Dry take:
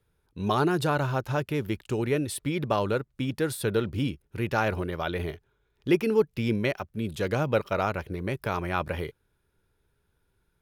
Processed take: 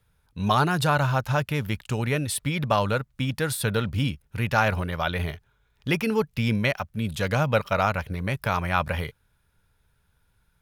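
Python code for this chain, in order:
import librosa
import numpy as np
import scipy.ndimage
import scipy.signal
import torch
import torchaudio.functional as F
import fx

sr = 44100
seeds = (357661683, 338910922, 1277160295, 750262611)

y = fx.peak_eq(x, sr, hz=360.0, db=-14.0, octaves=0.76)
y = F.gain(torch.from_numpy(y), 6.0).numpy()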